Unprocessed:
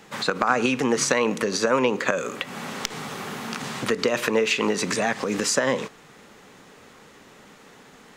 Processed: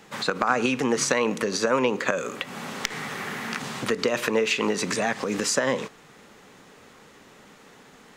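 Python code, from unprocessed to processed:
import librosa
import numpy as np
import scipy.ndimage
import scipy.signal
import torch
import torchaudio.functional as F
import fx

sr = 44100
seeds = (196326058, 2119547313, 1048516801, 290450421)

y = fx.peak_eq(x, sr, hz=1900.0, db=8.5, octaves=0.65, at=(2.84, 3.59))
y = y * 10.0 ** (-1.5 / 20.0)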